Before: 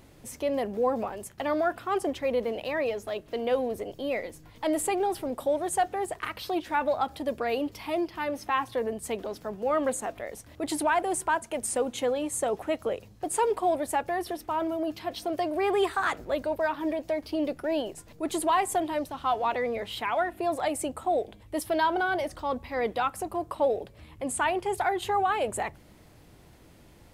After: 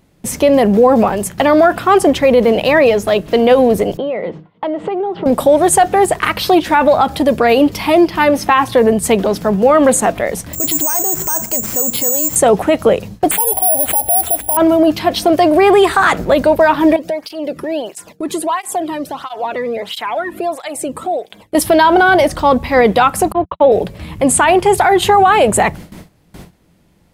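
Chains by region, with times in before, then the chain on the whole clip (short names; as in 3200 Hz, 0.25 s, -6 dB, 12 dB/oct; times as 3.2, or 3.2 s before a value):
3.97–5.26 speaker cabinet 180–2800 Hz, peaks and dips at 180 Hz +4 dB, 270 Hz -6 dB, 400 Hz +4 dB, 1700 Hz -7 dB, 2400 Hz -8 dB + compressor 12:1, threshold -35 dBFS
10.53–12.36 air absorption 260 m + careless resampling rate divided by 6×, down none, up zero stuff
13.31–14.57 EQ curve 100 Hz 0 dB, 150 Hz -17 dB, 280 Hz -7 dB, 430 Hz -16 dB, 760 Hz +10 dB, 1300 Hz -30 dB, 2000 Hz -17 dB, 3400 Hz -1 dB, 5000 Hz -24 dB, 7300 Hz -6 dB + careless resampling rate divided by 4×, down none, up zero stuff
16.96–21.55 compressor 2:1, threshold -42 dBFS + tape flanging out of phase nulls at 1.5 Hz, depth 1.5 ms
23.32–23.72 steep low-pass 4000 Hz 96 dB/oct + gate -36 dBFS, range -55 dB + three-band expander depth 70%
whole clip: gate with hold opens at -42 dBFS; bell 180 Hz +10.5 dB 0.39 oct; maximiser +20.5 dB; gain -1 dB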